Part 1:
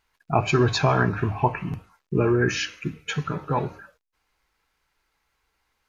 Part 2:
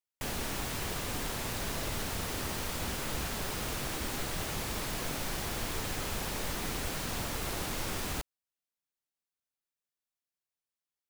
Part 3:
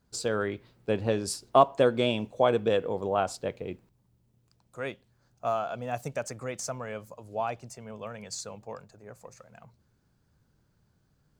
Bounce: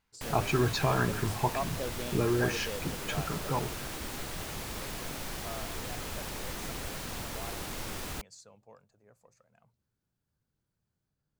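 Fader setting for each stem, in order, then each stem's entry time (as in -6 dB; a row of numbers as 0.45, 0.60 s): -7.5, -3.0, -15.0 dB; 0.00, 0.00, 0.00 s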